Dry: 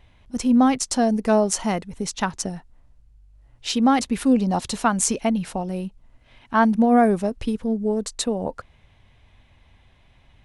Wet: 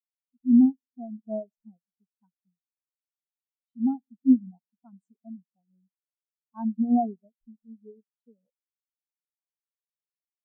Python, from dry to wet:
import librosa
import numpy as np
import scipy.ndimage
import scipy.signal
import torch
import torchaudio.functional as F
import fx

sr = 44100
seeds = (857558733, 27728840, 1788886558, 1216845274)

y = fx.echo_feedback(x, sr, ms=97, feedback_pct=56, wet_db=-18.0)
y = fx.spectral_expand(y, sr, expansion=4.0)
y = F.gain(torch.from_numpy(y), -5.0).numpy()